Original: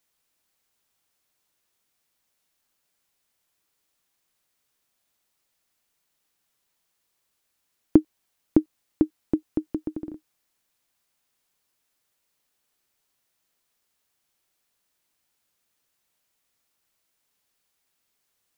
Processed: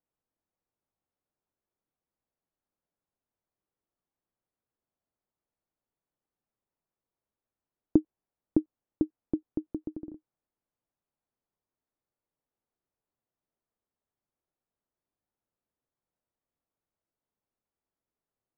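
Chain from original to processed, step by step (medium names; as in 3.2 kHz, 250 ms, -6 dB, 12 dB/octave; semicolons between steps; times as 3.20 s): Bessel low-pass 710 Hz, order 2; trim -5.5 dB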